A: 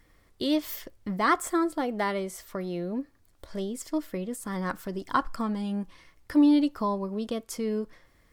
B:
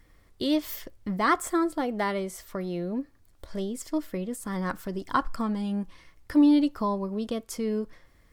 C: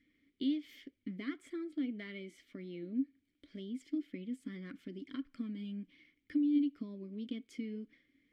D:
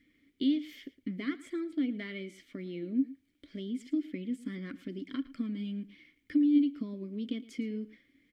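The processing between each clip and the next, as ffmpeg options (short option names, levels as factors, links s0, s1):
-af "lowshelf=f=130:g=4.5"
-filter_complex "[0:a]acompressor=threshold=0.0447:ratio=6,flanger=delay=0.4:depth=3.3:regen=80:speed=1.9:shape=triangular,asplit=3[s0][s1][s2];[s0]bandpass=f=270:t=q:w=8,volume=1[s3];[s1]bandpass=f=2290:t=q:w=8,volume=0.501[s4];[s2]bandpass=f=3010:t=q:w=8,volume=0.355[s5];[s3][s4][s5]amix=inputs=3:normalize=0,volume=2.37"
-af "aecho=1:1:112:0.119,volume=1.88"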